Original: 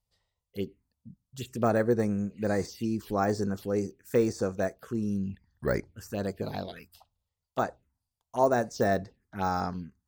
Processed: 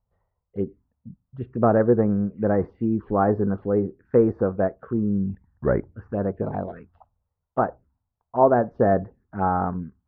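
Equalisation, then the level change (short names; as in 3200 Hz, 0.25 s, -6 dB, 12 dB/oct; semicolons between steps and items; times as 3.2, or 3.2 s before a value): LPF 1400 Hz 24 dB/oct; +7.0 dB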